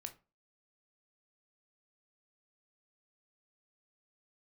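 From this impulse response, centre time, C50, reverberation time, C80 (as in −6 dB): 7 ms, 15.0 dB, 0.30 s, 22.0 dB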